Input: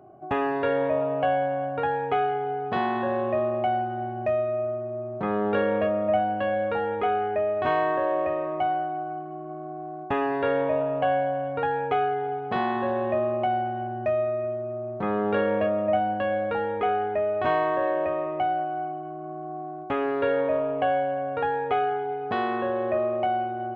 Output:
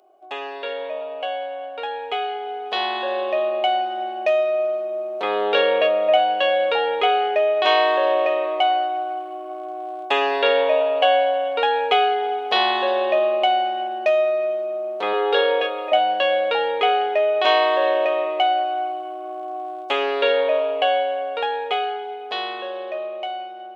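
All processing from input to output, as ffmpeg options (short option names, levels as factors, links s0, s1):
-filter_complex "[0:a]asettb=1/sr,asplit=3[s0][s1][s2];[s0]atrim=end=15.134[s3];[s1]atrim=start=15.13:end=15.92,asetpts=PTS-STARTPTS,afade=t=in:d=0.004:c=qsin,afade=t=out:st=0.786:d=0.004:c=qsin,highpass=f=450:p=1,equalizer=f=3600:w=0.36:g=-3.5,aecho=1:1:2.4:0.94,atrim=end_sample=34839[s4];[s2]atrim=start=15.916[s5];[s3][s4]acrossfade=d=0.004:c1=hsin:c2=qsin[s6];[s6][s5]acrossfade=d=0.004:c1=qsin:c2=hsin,dynaudnorm=f=470:g=13:m=6.68,highpass=f=420:w=0.5412,highpass=f=420:w=1.3066,highshelf=f=2300:t=q:w=1.5:g=12.5,volume=0.668"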